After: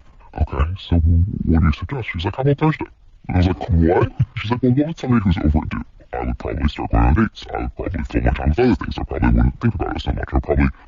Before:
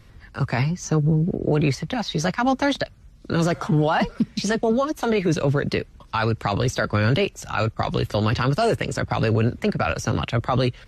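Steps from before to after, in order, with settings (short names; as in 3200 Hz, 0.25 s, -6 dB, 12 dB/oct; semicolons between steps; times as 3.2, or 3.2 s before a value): wow and flutter 32 cents; level quantiser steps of 10 dB; pitch shift -10.5 st; gain +7 dB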